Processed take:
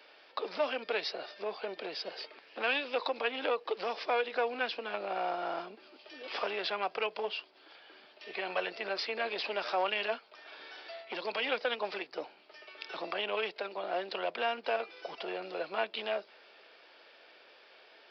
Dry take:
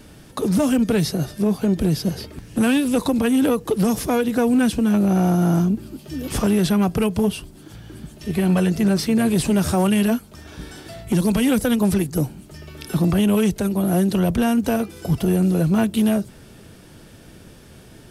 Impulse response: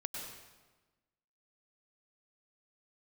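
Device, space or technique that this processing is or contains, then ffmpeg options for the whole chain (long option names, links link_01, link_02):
musical greeting card: -af "aresample=11025,aresample=44100,highpass=frequency=520:width=0.5412,highpass=frequency=520:width=1.3066,equalizer=frequency=2400:width_type=o:width=0.41:gain=5,volume=-6dB"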